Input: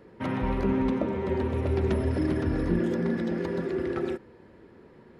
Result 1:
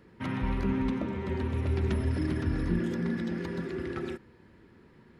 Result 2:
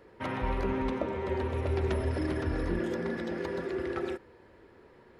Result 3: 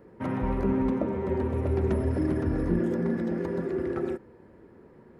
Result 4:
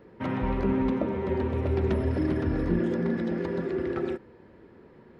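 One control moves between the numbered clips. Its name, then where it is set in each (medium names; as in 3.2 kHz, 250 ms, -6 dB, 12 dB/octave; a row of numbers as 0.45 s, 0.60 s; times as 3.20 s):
peaking EQ, frequency: 550 Hz, 190 Hz, 3.7 kHz, 13 kHz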